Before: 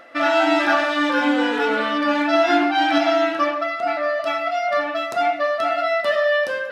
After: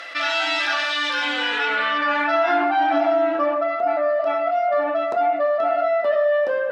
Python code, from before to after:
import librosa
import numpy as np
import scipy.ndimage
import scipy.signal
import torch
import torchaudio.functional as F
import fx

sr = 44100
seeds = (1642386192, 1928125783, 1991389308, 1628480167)

y = fx.filter_sweep_bandpass(x, sr, from_hz=4100.0, to_hz=560.0, start_s=1.15, end_s=3.14, q=0.95)
y = fx.env_flatten(y, sr, amount_pct=50)